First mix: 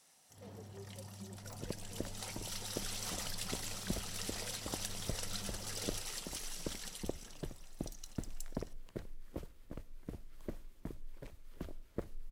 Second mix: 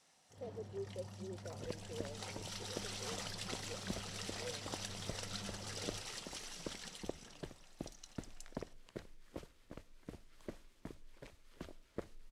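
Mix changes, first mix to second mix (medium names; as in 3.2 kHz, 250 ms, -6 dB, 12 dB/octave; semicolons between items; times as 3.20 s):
speech +10.5 dB; second sound: add tilt EQ +2 dB/octave; master: add distance through air 60 m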